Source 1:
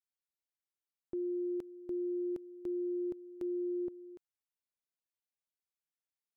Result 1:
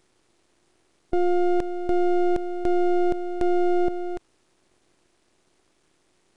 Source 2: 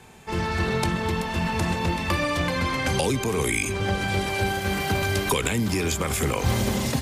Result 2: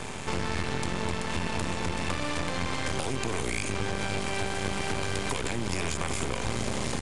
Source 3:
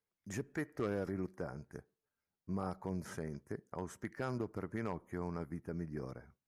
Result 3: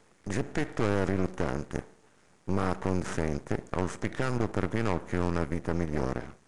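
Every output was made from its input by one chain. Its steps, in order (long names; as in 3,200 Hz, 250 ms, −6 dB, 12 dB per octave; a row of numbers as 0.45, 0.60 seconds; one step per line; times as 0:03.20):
compressor on every frequency bin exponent 0.6
downward compressor 6 to 1, threshold −25 dBFS
half-wave rectification
downsampling to 22,050 Hz
normalise the peak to −12 dBFS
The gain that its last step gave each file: +19.0, +1.5, +10.5 decibels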